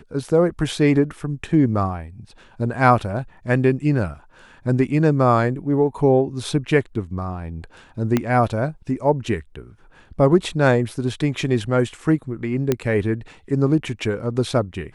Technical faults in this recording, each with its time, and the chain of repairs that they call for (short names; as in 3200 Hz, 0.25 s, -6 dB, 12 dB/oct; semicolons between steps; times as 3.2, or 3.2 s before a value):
8.17 pop -6 dBFS
12.72 pop -6 dBFS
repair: de-click